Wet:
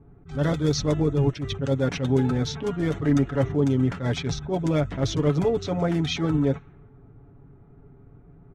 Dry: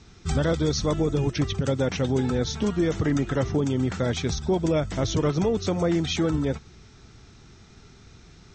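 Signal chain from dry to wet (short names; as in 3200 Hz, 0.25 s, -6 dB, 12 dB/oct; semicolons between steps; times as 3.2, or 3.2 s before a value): Wiener smoothing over 9 samples; low-pass opened by the level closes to 680 Hz, open at -19.5 dBFS; comb 7.1 ms, depth 60%; attack slew limiter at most 170 dB/s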